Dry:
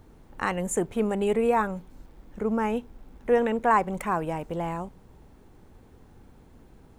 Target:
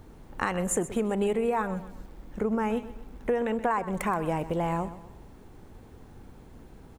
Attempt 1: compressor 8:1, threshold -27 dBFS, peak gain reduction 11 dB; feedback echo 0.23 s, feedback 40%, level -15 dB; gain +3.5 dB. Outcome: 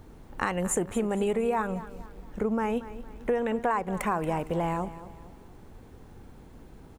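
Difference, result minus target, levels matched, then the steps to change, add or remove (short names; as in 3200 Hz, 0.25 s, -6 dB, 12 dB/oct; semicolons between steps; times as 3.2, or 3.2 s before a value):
echo 0.104 s late
change: feedback echo 0.126 s, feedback 40%, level -15 dB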